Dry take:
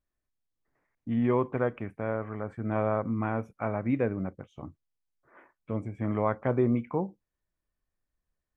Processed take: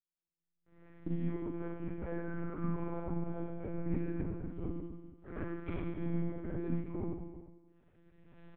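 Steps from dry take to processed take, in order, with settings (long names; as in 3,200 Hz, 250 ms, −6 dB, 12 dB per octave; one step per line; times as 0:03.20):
spectral envelope flattened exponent 0.6
camcorder AGC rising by 21 dB per second
noise gate with hold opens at −54 dBFS
parametric band 250 Hz +14 dB 1.4 octaves
downward compressor 6 to 1, threshold −31 dBFS, peak gain reduction 21.5 dB
rotating-speaker cabinet horn 6.7 Hz, later 1.1 Hz, at 0:02.77
tuned comb filter 110 Hz, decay 0.35 s, harmonics odd, mix 60%
sound drawn into the spectrogram fall, 0:02.05–0:03.71, 470–1,800 Hz −56 dBFS
high-frequency loss of the air 440 metres
on a send: single-tap delay 291 ms −18.5 dB
on the sum: four-comb reverb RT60 1.3 s, combs from 30 ms, DRR −5.5 dB
one-pitch LPC vocoder at 8 kHz 170 Hz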